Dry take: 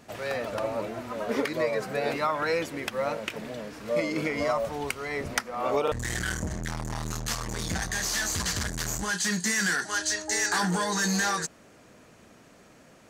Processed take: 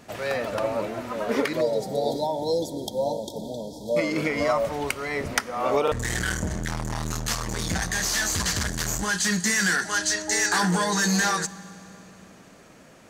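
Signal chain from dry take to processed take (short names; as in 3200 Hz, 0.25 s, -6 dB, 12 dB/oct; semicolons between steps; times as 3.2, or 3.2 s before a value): spectral delete 1.61–3.97, 980–3200 Hz; on a send: reverb RT60 3.1 s, pre-delay 3 ms, DRR 18 dB; on the sum: gain +3.5 dB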